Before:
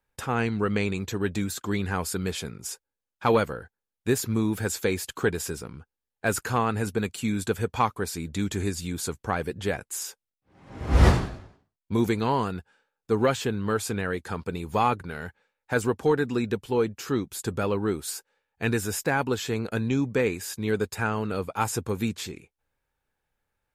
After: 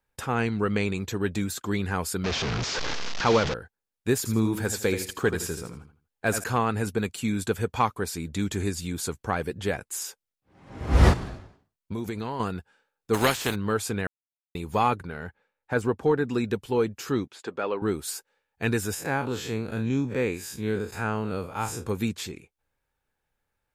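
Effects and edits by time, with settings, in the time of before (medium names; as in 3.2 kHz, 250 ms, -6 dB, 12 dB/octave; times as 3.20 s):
2.24–3.54 s: one-bit delta coder 32 kbps, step -21.5 dBFS
4.17–6.44 s: feedback delay 81 ms, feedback 27%, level -9 dB
11.13–12.40 s: compression, threshold -28 dBFS
13.13–13.54 s: spectral contrast reduction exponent 0.49
14.07–14.55 s: mute
15.07–16.29 s: treble shelf 3.2 kHz -10 dB
17.27–17.82 s: band-pass 370–3400 Hz
18.94–21.86 s: spectral blur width 85 ms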